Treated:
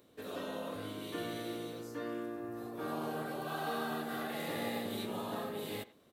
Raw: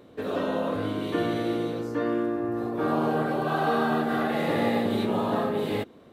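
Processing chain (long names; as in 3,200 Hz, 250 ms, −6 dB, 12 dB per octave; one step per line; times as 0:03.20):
first-order pre-emphasis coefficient 0.8
far-end echo of a speakerphone 90 ms, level −17 dB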